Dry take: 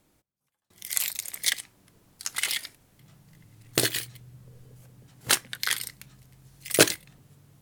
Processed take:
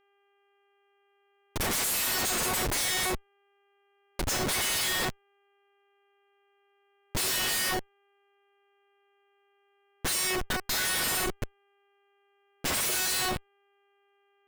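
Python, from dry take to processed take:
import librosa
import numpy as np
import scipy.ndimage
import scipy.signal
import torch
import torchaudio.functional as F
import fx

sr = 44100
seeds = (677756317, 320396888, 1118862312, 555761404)

p1 = fx.bass_treble(x, sr, bass_db=-14, treble_db=12)
p2 = fx.spec_gate(p1, sr, threshold_db=-30, keep='strong')
p3 = fx.dynamic_eq(p2, sr, hz=1800.0, q=1.4, threshold_db=-36.0, ratio=4.0, max_db=4)
p4 = fx.over_compress(p3, sr, threshold_db=-20.0, ratio=-0.5)
p5 = p3 + F.gain(torch.from_numpy(p4), -2.0).numpy()
p6 = fx.comb_fb(p5, sr, f0_hz=370.0, decay_s=0.48, harmonics='all', damping=0.0, mix_pct=90)
p7 = fx.stretch_vocoder(p6, sr, factor=1.9)
p8 = fx.schmitt(p7, sr, flips_db=-35.5)
p9 = fx.dmg_buzz(p8, sr, base_hz=400.0, harmonics=8, level_db=-77.0, tilt_db=-4, odd_only=False)
y = F.gain(torch.from_numpy(p9), 7.5).numpy()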